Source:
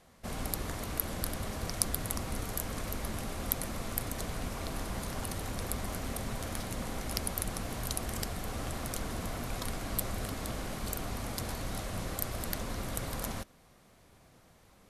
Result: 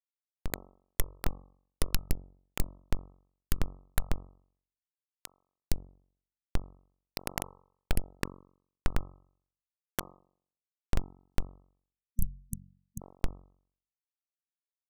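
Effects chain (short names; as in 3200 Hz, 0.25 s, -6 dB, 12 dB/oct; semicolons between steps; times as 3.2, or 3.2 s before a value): Schmitt trigger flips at -20 dBFS; de-hum 46.25 Hz, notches 28; 8.2–10.19 bell 1400 Hz +6 dB 1 oct; 11.96–13.01 spectral delete 230–5900 Hz; gain +16 dB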